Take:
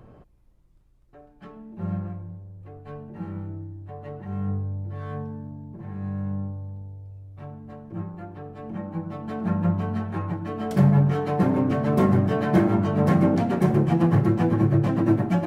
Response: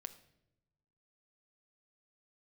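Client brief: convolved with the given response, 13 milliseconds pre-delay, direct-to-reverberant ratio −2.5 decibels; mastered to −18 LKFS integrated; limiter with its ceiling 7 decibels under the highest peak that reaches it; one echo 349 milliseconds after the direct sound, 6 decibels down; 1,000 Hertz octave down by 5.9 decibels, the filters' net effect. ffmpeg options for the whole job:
-filter_complex "[0:a]equalizer=frequency=1000:width_type=o:gain=-8.5,alimiter=limit=-14.5dB:level=0:latency=1,aecho=1:1:349:0.501,asplit=2[link_01][link_02];[1:a]atrim=start_sample=2205,adelay=13[link_03];[link_02][link_03]afir=irnorm=-1:irlink=0,volume=7dB[link_04];[link_01][link_04]amix=inputs=2:normalize=0,volume=3dB"

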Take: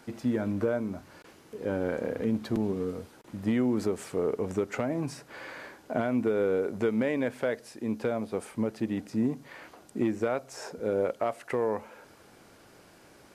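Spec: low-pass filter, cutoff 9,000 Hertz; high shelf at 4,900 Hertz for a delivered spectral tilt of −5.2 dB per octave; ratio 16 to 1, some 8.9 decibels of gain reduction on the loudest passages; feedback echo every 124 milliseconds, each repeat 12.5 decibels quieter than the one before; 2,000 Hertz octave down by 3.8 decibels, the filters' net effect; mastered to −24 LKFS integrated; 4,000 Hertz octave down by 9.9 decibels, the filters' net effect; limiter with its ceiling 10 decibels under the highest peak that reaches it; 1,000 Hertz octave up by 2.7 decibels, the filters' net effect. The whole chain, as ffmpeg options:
ffmpeg -i in.wav -af "lowpass=9000,equalizer=frequency=1000:width_type=o:gain=6,equalizer=frequency=2000:width_type=o:gain=-5.5,equalizer=frequency=4000:width_type=o:gain=-8,highshelf=frequency=4900:gain=-7.5,acompressor=threshold=-31dB:ratio=16,alimiter=level_in=5.5dB:limit=-24dB:level=0:latency=1,volume=-5.5dB,aecho=1:1:124|248|372:0.237|0.0569|0.0137,volume=16dB" out.wav

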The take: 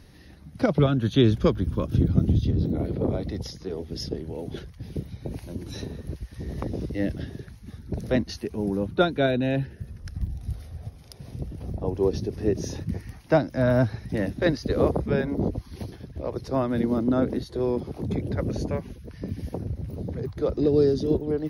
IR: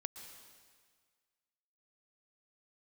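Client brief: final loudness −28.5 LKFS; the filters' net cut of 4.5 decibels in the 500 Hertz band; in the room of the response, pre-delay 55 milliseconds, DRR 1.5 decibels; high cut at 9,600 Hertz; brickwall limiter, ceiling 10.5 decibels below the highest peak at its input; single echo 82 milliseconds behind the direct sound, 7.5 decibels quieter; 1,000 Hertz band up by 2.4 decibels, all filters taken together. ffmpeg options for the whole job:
-filter_complex "[0:a]lowpass=9600,equalizer=frequency=500:width_type=o:gain=-7.5,equalizer=frequency=1000:width_type=o:gain=6.5,alimiter=limit=-17.5dB:level=0:latency=1,aecho=1:1:82:0.422,asplit=2[link_01][link_02];[1:a]atrim=start_sample=2205,adelay=55[link_03];[link_02][link_03]afir=irnorm=-1:irlink=0,volume=1dB[link_04];[link_01][link_04]amix=inputs=2:normalize=0,volume=-1dB"

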